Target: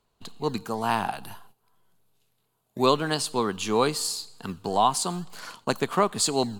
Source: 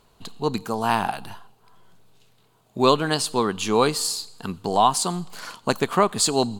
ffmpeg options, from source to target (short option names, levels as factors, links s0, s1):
-filter_complex "[0:a]asettb=1/sr,asplit=3[s0][s1][s2];[s0]atrim=end=1.234[s3];[s1]atrim=start=1.23:end=2.86,asetpts=PTS-STARTPTS,afade=t=in:d=0.004:c=qsin,afade=t=out:st=1.626:d=0.004:c=qsin,equalizer=f=12000:t=o:w=0.65:g=12[s4];[s2]atrim=start=2.856[s5];[s3][s4]acrossfade=d=0.004:c1=hsin:c2=qsin[s6];[s6][s5]acrossfade=d=0.004:c1=qsin:c2=hsin,acrossover=split=150[s7][s8];[s7]acrusher=samples=26:mix=1:aa=0.000001:lfo=1:lforange=15.6:lforate=2[s9];[s9][s8]amix=inputs=2:normalize=0,agate=range=0.316:threshold=0.00447:ratio=16:detection=peak,volume=0.668"